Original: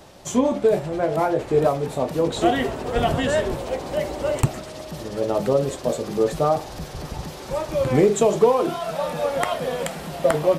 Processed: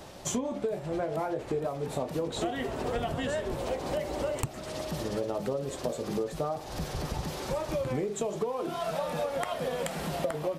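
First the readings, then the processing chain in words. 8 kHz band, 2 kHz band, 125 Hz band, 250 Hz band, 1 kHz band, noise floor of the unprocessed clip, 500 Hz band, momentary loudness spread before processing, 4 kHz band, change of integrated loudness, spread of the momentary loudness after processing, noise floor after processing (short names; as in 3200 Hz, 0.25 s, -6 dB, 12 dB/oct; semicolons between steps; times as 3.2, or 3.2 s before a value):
-6.0 dB, -9.0 dB, -9.0 dB, -10.0 dB, -10.0 dB, -37 dBFS, -11.0 dB, 11 LU, -7.0 dB, -10.5 dB, 3 LU, -42 dBFS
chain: compressor 12:1, threshold -28 dBFS, peak gain reduction 18 dB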